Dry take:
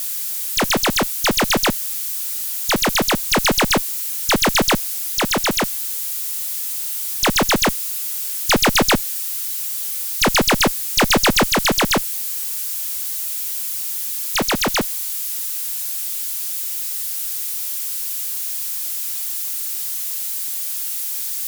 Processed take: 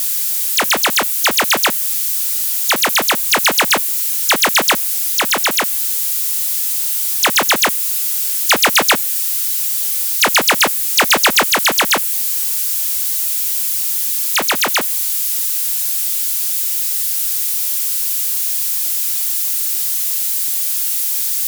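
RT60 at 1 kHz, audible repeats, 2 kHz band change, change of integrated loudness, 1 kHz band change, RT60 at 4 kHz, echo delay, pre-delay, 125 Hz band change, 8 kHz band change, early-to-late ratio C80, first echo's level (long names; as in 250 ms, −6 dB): no reverb audible, no echo audible, +5.0 dB, +5.5 dB, +3.5 dB, no reverb audible, no echo audible, no reverb audible, −10.5 dB, +6.0 dB, no reverb audible, no echo audible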